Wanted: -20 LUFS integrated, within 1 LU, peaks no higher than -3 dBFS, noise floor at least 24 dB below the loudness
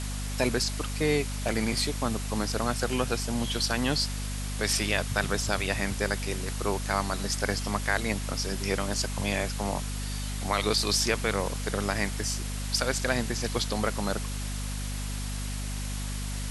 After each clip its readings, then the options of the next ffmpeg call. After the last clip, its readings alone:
hum 50 Hz; highest harmonic 250 Hz; hum level -31 dBFS; noise floor -33 dBFS; noise floor target -53 dBFS; loudness -29.0 LUFS; peak level -8.5 dBFS; loudness target -20.0 LUFS
-> -af "bandreject=f=50:t=h:w=6,bandreject=f=100:t=h:w=6,bandreject=f=150:t=h:w=6,bandreject=f=200:t=h:w=6,bandreject=f=250:t=h:w=6"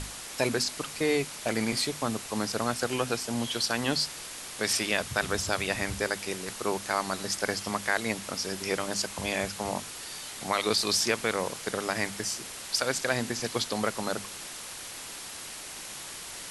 hum not found; noise floor -41 dBFS; noise floor target -54 dBFS
-> -af "afftdn=nr=13:nf=-41"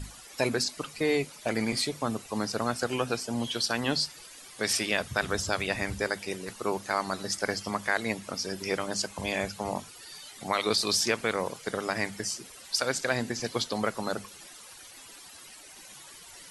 noise floor -49 dBFS; noise floor target -54 dBFS
-> -af "afftdn=nr=6:nf=-49"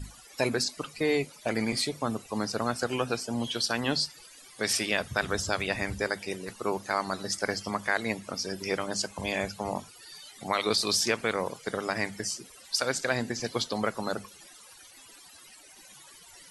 noise floor -52 dBFS; noise floor target -54 dBFS
-> -af "afftdn=nr=6:nf=-52"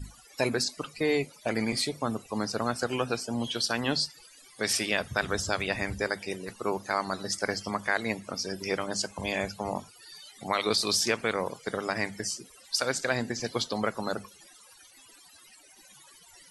noise floor -55 dBFS; loudness -30.0 LUFS; peak level -9.5 dBFS; loudness target -20.0 LUFS
-> -af "volume=3.16,alimiter=limit=0.708:level=0:latency=1"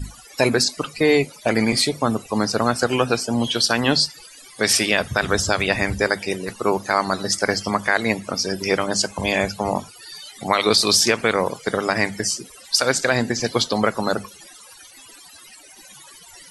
loudness -20.5 LUFS; peak level -3.0 dBFS; noise floor -45 dBFS

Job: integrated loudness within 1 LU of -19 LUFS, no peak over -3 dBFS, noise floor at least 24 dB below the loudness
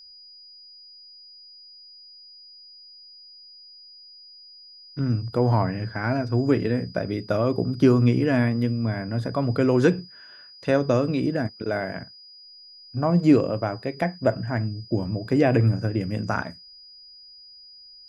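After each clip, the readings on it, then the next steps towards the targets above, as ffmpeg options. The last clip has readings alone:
steady tone 4.9 kHz; tone level -45 dBFS; loudness -23.5 LUFS; peak level -5.5 dBFS; loudness target -19.0 LUFS
-> -af "bandreject=f=4900:w=30"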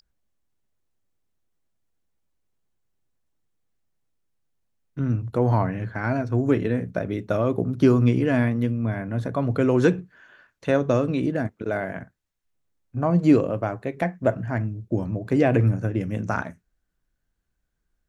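steady tone not found; loudness -23.5 LUFS; peak level -5.5 dBFS; loudness target -19.0 LUFS
-> -af "volume=1.68,alimiter=limit=0.708:level=0:latency=1"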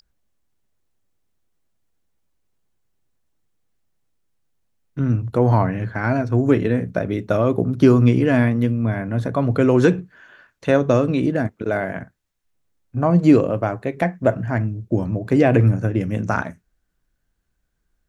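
loudness -19.5 LUFS; peak level -3.0 dBFS; noise floor -72 dBFS

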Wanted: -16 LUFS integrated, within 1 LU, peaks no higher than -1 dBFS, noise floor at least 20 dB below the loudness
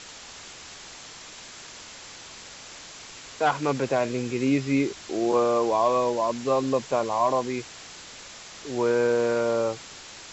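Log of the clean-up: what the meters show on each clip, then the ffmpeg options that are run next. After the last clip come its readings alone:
noise floor -44 dBFS; noise floor target -45 dBFS; loudness -25.0 LUFS; peak level -11.0 dBFS; loudness target -16.0 LUFS
-> -af "afftdn=nr=6:nf=-44"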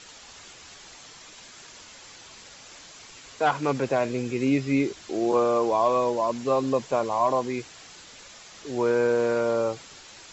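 noise floor -48 dBFS; loudness -25.0 LUFS; peak level -11.0 dBFS; loudness target -16.0 LUFS
-> -af "volume=2.82"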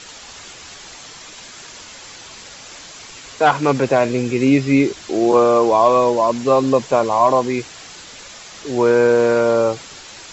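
loudness -16.0 LUFS; peak level -2.0 dBFS; noise floor -39 dBFS

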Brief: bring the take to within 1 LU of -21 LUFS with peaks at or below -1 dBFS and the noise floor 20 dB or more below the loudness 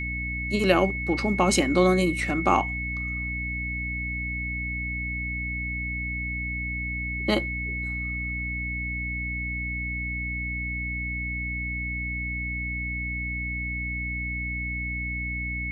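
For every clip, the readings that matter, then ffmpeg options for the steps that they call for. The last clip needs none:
hum 60 Hz; highest harmonic 300 Hz; hum level -31 dBFS; steady tone 2.2 kHz; tone level -30 dBFS; loudness -27.5 LUFS; peak level -6.0 dBFS; loudness target -21.0 LUFS
-> -af "bandreject=f=60:t=h:w=4,bandreject=f=120:t=h:w=4,bandreject=f=180:t=h:w=4,bandreject=f=240:t=h:w=4,bandreject=f=300:t=h:w=4"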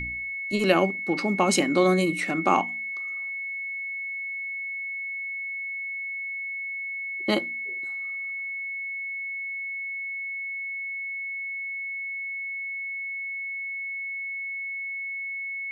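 hum not found; steady tone 2.2 kHz; tone level -30 dBFS
-> -af "bandreject=f=2200:w=30"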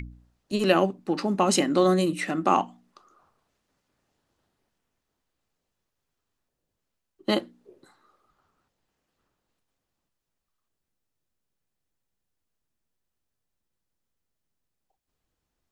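steady tone not found; loudness -24.5 LUFS; peak level -6.5 dBFS; loudness target -21.0 LUFS
-> -af "volume=1.5"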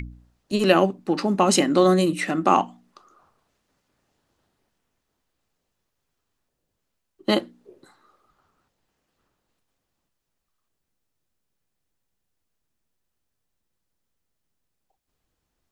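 loudness -21.0 LUFS; peak level -2.5 dBFS; noise floor -79 dBFS

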